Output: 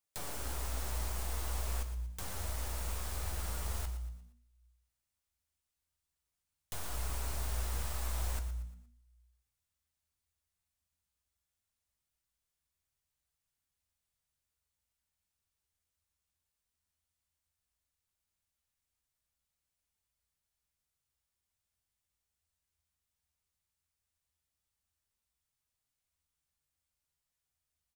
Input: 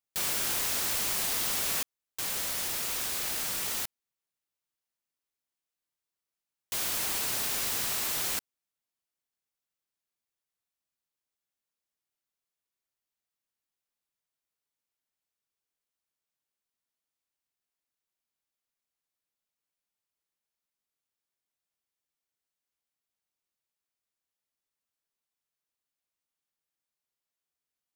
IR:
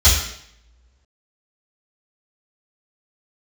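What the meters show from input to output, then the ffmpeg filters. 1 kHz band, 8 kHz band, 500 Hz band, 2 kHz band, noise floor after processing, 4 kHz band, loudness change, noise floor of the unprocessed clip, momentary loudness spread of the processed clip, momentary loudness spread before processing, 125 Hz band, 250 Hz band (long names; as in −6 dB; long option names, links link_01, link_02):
−5.5 dB, −13.0 dB, −5.0 dB, −11.5 dB, below −85 dBFS, −14.5 dB, −10.5 dB, below −85 dBFS, 6 LU, 6 LU, +11.0 dB, −5.5 dB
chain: -filter_complex "[0:a]aeval=exprs='clip(val(0),-1,0.0211)':channel_layout=same,asubboost=boost=4:cutoff=150,acrossover=split=330|1300[link_01][link_02][link_03];[link_01]acompressor=threshold=-44dB:ratio=4[link_04];[link_02]acompressor=threshold=-47dB:ratio=4[link_05];[link_03]acompressor=threshold=-48dB:ratio=4[link_06];[link_04][link_05][link_06]amix=inputs=3:normalize=0,flanger=delay=6.9:depth=5.1:regen=66:speed=0.15:shape=sinusoidal,equalizer=frequency=8700:width=2.1:gain=4,asplit=5[link_07][link_08][link_09][link_10][link_11];[link_08]adelay=117,afreqshift=-60,volume=-11dB[link_12];[link_09]adelay=234,afreqshift=-120,volume=-19dB[link_13];[link_10]adelay=351,afreqshift=-180,volume=-26.9dB[link_14];[link_11]adelay=468,afreqshift=-240,volume=-34.9dB[link_15];[link_07][link_12][link_13][link_14][link_15]amix=inputs=5:normalize=0,asplit=2[link_16][link_17];[1:a]atrim=start_sample=2205[link_18];[link_17][link_18]afir=irnorm=-1:irlink=0,volume=-35.5dB[link_19];[link_16][link_19]amix=inputs=2:normalize=0,volume=4.5dB"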